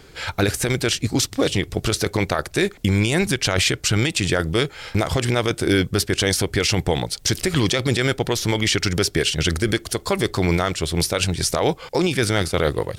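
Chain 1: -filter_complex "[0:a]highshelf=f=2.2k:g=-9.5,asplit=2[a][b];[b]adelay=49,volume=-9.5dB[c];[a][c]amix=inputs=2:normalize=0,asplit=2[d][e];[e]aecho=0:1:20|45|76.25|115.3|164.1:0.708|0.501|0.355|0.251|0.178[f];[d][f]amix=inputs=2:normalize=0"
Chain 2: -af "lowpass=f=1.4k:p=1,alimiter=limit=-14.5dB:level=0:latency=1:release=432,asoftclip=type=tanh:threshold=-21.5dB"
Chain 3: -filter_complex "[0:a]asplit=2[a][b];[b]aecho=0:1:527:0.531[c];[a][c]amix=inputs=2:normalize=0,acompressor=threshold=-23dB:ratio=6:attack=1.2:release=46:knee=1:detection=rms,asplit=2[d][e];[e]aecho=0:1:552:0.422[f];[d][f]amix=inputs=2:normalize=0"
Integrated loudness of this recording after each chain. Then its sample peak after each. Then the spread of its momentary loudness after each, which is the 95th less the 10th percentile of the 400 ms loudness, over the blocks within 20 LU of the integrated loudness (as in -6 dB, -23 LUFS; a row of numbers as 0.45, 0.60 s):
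-19.5, -30.5, -27.0 LUFS; -3.5, -21.5, -13.5 dBFS; 4, 3, 2 LU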